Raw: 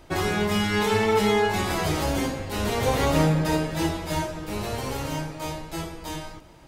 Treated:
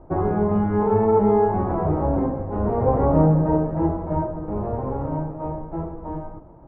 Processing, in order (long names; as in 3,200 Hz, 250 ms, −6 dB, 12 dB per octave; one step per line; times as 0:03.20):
low-pass filter 1,000 Hz 24 dB per octave
level +4.5 dB